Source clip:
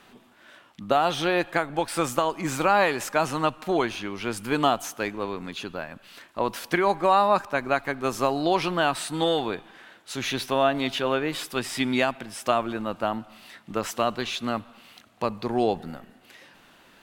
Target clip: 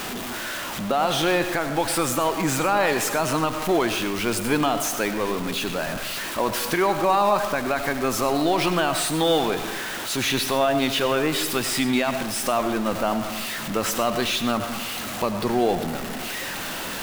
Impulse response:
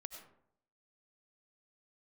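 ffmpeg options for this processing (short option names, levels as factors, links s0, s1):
-filter_complex "[0:a]aeval=exprs='val(0)+0.5*0.0376*sgn(val(0))':c=same,alimiter=limit=0.224:level=0:latency=1:release=83,asplit=2[s0][s1];[1:a]atrim=start_sample=2205,highshelf=f=9400:g=5[s2];[s1][s2]afir=irnorm=-1:irlink=0,volume=2.82[s3];[s0][s3]amix=inputs=2:normalize=0,volume=0.501"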